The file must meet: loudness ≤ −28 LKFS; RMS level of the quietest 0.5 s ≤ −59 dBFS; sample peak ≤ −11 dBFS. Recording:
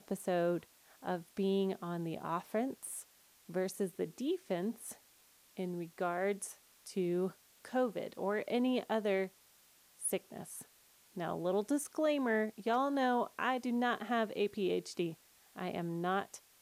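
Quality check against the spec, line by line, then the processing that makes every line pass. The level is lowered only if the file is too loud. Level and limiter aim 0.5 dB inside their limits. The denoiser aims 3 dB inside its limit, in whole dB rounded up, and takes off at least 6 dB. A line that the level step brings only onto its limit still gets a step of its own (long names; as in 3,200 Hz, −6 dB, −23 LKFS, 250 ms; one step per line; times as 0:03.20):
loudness −36.5 LKFS: in spec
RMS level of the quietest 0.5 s −66 dBFS: in spec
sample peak −20.5 dBFS: in spec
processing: no processing needed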